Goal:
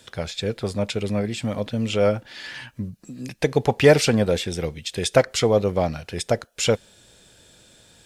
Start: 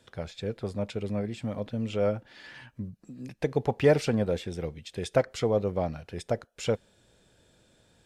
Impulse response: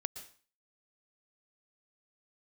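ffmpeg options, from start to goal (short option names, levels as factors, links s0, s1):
-af "highshelf=f=2100:g=9.5,volume=2.11"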